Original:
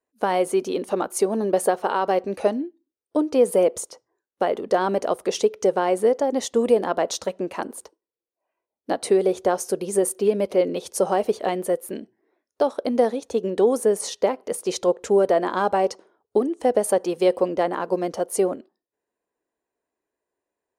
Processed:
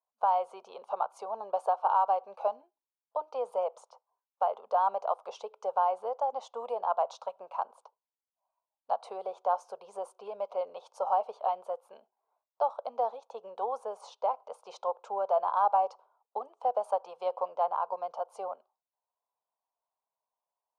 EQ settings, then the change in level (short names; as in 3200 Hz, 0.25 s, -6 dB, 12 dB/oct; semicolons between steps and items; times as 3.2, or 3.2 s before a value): ladder band-pass 1100 Hz, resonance 40%; fixed phaser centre 770 Hz, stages 4; +7.5 dB